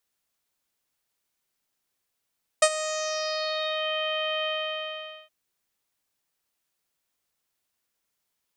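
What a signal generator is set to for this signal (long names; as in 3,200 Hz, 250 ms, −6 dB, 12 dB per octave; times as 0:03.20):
subtractive voice saw D#5 24 dB per octave, low-pass 3,100 Hz, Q 4.6, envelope 1.5 octaves, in 1.27 s, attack 6.4 ms, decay 0.06 s, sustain −15 dB, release 0.83 s, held 1.84 s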